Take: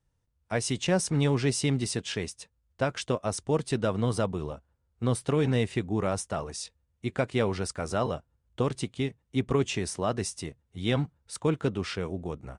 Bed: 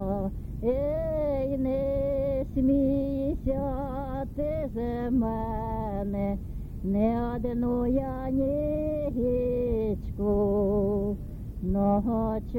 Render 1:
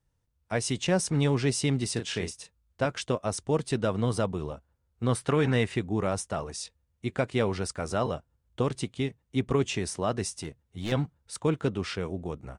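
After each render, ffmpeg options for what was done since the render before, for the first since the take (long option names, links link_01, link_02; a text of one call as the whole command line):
ffmpeg -i in.wav -filter_complex "[0:a]asettb=1/sr,asplit=3[link_01][link_02][link_03];[link_01]atrim=end=1.934[link_04];[link_02]atrim=start=1.93:end=2.86,asetpts=PTS-STARTPTS,afade=type=in:duration=0.004:curve=qsin,afade=type=out:start_time=0.926:duration=0.004:curve=qsin,asplit=2[link_05][link_06];[link_06]adelay=34,volume=-7dB[link_07];[link_05][link_07]amix=inputs=2:normalize=0,atrim=end_sample=41013[link_08];[link_03]atrim=start=2.856[link_09];[link_04][link_08]acrossfade=duration=0.004:curve1=hsin:curve2=qsin[link_10];[link_10][link_09]acrossfade=duration=0.004:curve1=qsin:curve2=hsin,asettb=1/sr,asplit=3[link_11][link_12][link_13];[link_11]atrim=end=5.094[link_14];[link_12]atrim=start=5.09:end=5.76,asetpts=PTS-STARTPTS,afade=type=in:duration=0.004:curve=qsin,afade=type=out:start_time=0.666:duration=0.004:curve=qsin,equalizer=frequency=1500:width=0.95:gain=7[link_15];[link_13]atrim=start=5.756[link_16];[link_14][link_15]acrossfade=duration=0.004:curve1=hsin:curve2=qsin[link_17];[link_17][link_16]acrossfade=duration=0.004:curve1=qsin:curve2=hsin,asettb=1/sr,asplit=3[link_18][link_19][link_20];[link_18]atrim=end=10.314[link_21];[link_19]atrim=start=10.31:end=10.92,asetpts=PTS-STARTPTS,afade=type=in:duration=0.004:curve=qsin,afade=type=out:start_time=0.606:duration=0.004:curve=qsin,asoftclip=type=hard:threshold=-28dB[link_22];[link_20]atrim=start=10.916[link_23];[link_21][link_22]acrossfade=duration=0.004:curve1=hsin:curve2=qsin[link_24];[link_24][link_23]acrossfade=duration=0.004:curve1=qsin:curve2=hsin" out.wav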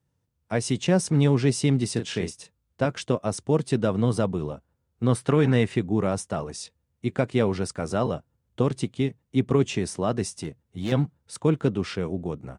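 ffmpeg -i in.wav -af "highpass=120,lowshelf=frequency=420:gain=8" out.wav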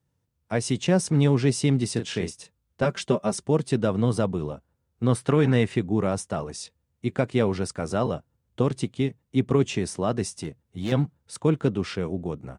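ffmpeg -i in.wav -filter_complex "[0:a]asettb=1/sr,asplit=3[link_01][link_02][link_03];[link_01]atrim=end=2.824[link_04];[link_02]atrim=start=2.82:end=3.48,asetpts=PTS-STARTPTS,afade=type=in:duration=0.004:curve=qsin,afade=type=out:start_time=0.656:duration=0.004:curve=qsin,aecho=1:1:5.1:0.77,atrim=end_sample=29106[link_05];[link_03]atrim=start=3.476[link_06];[link_04][link_05]acrossfade=duration=0.004:curve1=hsin:curve2=qsin[link_07];[link_07][link_06]acrossfade=duration=0.004:curve1=qsin:curve2=hsin" out.wav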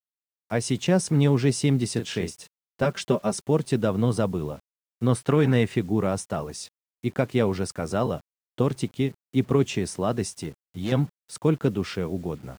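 ffmpeg -i in.wav -af "acrusher=bits=8:mix=0:aa=0.000001" out.wav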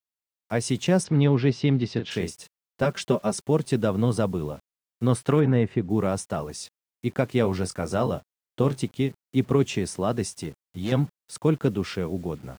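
ffmpeg -i in.wav -filter_complex "[0:a]asplit=3[link_01][link_02][link_03];[link_01]afade=type=out:start_time=1.03:duration=0.02[link_04];[link_02]lowpass=frequency=4400:width=0.5412,lowpass=frequency=4400:width=1.3066,afade=type=in:start_time=1.03:duration=0.02,afade=type=out:start_time=2.1:duration=0.02[link_05];[link_03]afade=type=in:start_time=2.1:duration=0.02[link_06];[link_04][link_05][link_06]amix=inputs=3:normalize=0,asplit=3[link_07][link_08][link_09];[link_07]afade=type=out:start_time=5.39:duration=0.02[link_10];[link_08]lowpass=frequency=1100:poles=1,afade=type=in:start_time=5.39:duration=0.02,afade=type=out:start_time=5.89:duration=0.02[link_11];[link_09]afade=type=in:start_time=5.89:duration=0.02[link_12];[link_10][link_11][link_12]amix=inputs=3:normalize=0,asettb=1/sr,asplit=3[link_13][link_14][link_15];[link_13]atrim=end=7.424[link_16];[link_14]atrim=start=7.42:end=8.82,asetpts=PTS-STARTPTS,afade=type=in:duration=0.004:curve=qsin,afade=type=out:start_time=1.396:duration=0.004:curve=qsin,asplit=2[link_17][link_18];[link_18]adelay=22,volume=-9.5dB[link_19];[link_17][link_19]amix=inputs=2:normalize=0,atrim=end_sample=61740[link_20];[link_15]atrim=start=8.816[link_21];[link_16][link_20]acrossfade=duration=0.004:curve1=hsin:curve2=qsin[link_22];[link_22][link_21]acrossfade=duration=0.004:curve1=qsin:curve2=hsin" out.wav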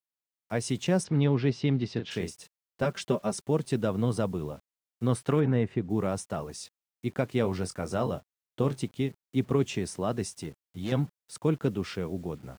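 ffmpeg -i in.wav -af "volume=-4.5dB" out.wav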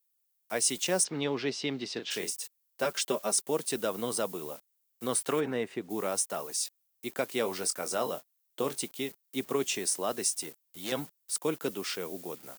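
ffmpeg -i in.wav -af "highpass=360,aemphasis=mode=production:type=75fm" out.wav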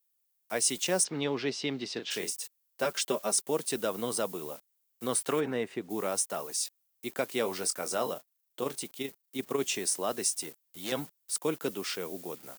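ffmpeg -i in.wav -filter_complex "[0:a]asettb=1/sr,asplit=3[link_01][link_02][link_03];[link_01]atrim=end=8.134[link_04];[link_02]atrim=start=8.13:end=9.6,asetpts=PTS-STARTPTS,afade=type=in:duration=0.004:curve=qsin,afade=type=out:start_time=1.466:duration=0.004:curve=qsin,tremolo=f=26:d=0.462[link_05];[link_03]atrim=start=9.596[link_06];[link_04][link_05]acrossfade=duration=0.004:curve1=hsin:curve2=qsin[link_07];[link_07][link_06]acrossfade=duration=0.004:curve1=qsin:curve2=hsin" out.wav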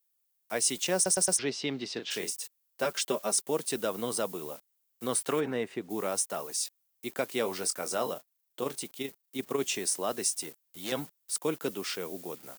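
ffmpeg -i in.wav -filter_complex "[0:a]asplit=5[link_01][link_02][link_03][link_04][link_05];[link_01]atrim=end=1.062[link_06];[link_02]atrim=start=0.948:end=1.062[link_07];[link_03]atrim=start=0.948:end=1.062[link_08];[link_04]atrim=start=0.948:end=1.062[link_09];[link_05]atrim=start=1.388[link_10];[link_06][link_07]acrossfade=duration=0.004:curve1=hsin:curve2=hsin[link_11];[link_11][link_08]acrossfade=duration=0.004:curve1=hsin:curve2=hsin[link_12];[link_12][link_09]acrossfade=duration=0.004:curve1=hsin:curve2=hsin[link_13];[link_13][link_10]acrossfade=duration=0.004:curve1=hsin:curve2=hsin" out.wav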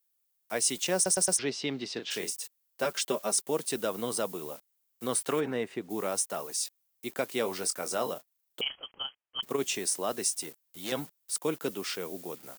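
ffmpeg -i in.wav -filter_complex "[0:a]asettb=1/sr,asplit=3[link_01][link_02][link_03];[link_01]atrim=end=8.614[link_04];[link_02]atrim=start=8.61:end=9.43,asetpts=PTS-STARTPTS,afade=type=in:duration=0.004:curve=qsin,afade=type=out:start_time=0.816:duration=0.004:curve=qsin,lowpass=frequency=2900:width_type=q:width=0.5098,lowpass=frequency=2900:width_type=q:width=0.6013,lowpass=frequency=2900:width_type=q:width=0.9,lowpass=frequency=2900:width_type=q:width=2.563,afreqshift=-3400[link_05];[link_03]atrim=start=9.426[link_06];[link_04][link_05]acrossfade=duration=0.004:curve1=hsin:curve2=qsin[link_07];[link_07][link_06]acrossfade=duration=0.004:curve1=qsin:curve2=hsin" out.wav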